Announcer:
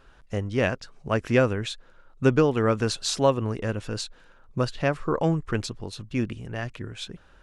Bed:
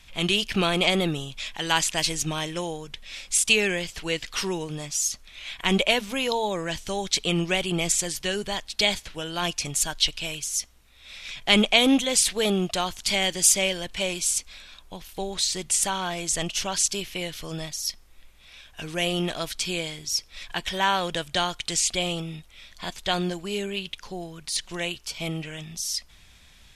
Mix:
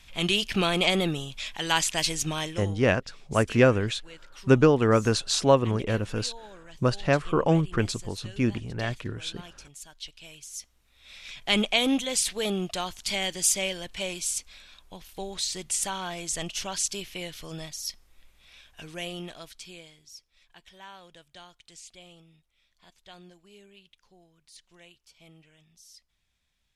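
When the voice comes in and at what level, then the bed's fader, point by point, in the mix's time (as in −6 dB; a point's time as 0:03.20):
2.25 s, +1.5 dB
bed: 0:02.45 −1.5 dB
0:02.93 −20 dB
0:09.89 −20 dB
0:11.09 −5 dB
0:18.58 −5 dB
0:20.39 −23.5 dB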